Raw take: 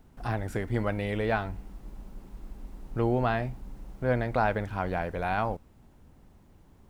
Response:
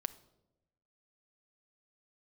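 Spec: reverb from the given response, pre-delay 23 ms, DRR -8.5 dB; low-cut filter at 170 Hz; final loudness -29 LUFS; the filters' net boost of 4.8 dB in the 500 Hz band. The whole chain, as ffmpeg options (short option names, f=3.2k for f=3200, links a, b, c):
-filter_complex "[0:a]highpass=170,equalizer=f=500:t=o:g=6,asplit=2[a][b];[1:a]atrim=start_sample=2205,adelay=23[c];[b][c]afir=irnorm=-1:irlink=0,volume=9.5dB[d];[a][d]amix=inputs=2:normalize=0,volume=-10.5dB"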